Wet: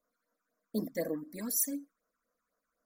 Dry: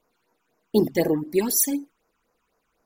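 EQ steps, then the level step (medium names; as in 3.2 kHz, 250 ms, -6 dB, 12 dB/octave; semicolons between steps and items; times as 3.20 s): bass shelf 150 Hz -7.5 dB; static phaser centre 570 Hz, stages 8; -8.5 dB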